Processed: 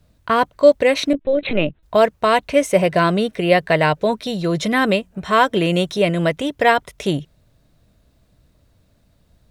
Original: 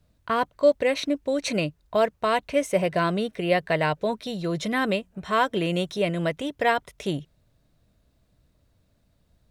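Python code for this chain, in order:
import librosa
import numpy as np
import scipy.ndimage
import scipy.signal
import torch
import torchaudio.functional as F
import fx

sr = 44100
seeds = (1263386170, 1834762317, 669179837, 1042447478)

y = fx.lpc_vocoder(x, sr, seeds[0], excitation='pitch_kept', order=16, at=(1.13, 1.83))
y = y * librosa.db_to_amplitude(7.5)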